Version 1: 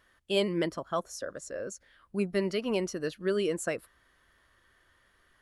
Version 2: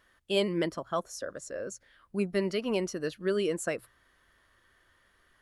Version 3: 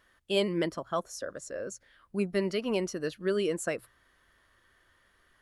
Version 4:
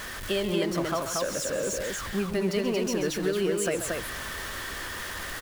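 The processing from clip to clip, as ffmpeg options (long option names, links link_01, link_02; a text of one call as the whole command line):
ffmpeg -i in.wav -af "bandreject=frequency=60:width_type=h:width=6,bandreject=frequency=120:width_type=h:width=6" out.wav
ffmpeg -i in.wav -af anull out.wav
ffmpeg -i in.wav -af "aeval=exprs='val(0)+0.5*0.0158*sgn(val(0))':channel_layout=same,acompressor=threshold=-29dB:ratio=6,aecho=1:1:134.1|230.3:0.316|0.708,volume=4dB" out.wav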